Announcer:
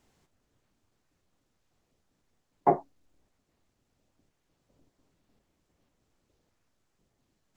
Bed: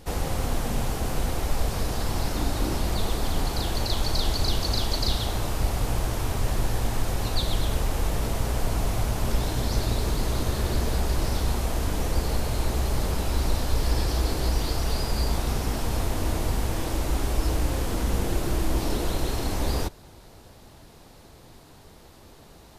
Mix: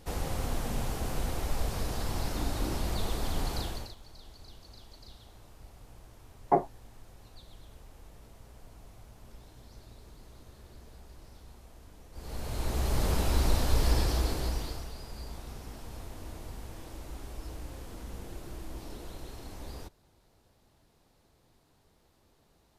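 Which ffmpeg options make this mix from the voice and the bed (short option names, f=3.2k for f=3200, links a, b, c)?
-filter_complex "[0:a]adelay=3850,volume=-1.5dB[a];[1:a]volume=19dB,afade=t=out:st=3.56:d=0.39:silence=0.0944061,afade=t=in:st=12.12:d=1:silence=0.0562341,afade=t=out:st=13.89:d=1.02:silence=0.16788[b];[a][b]amix=inputs=2:normalize=0"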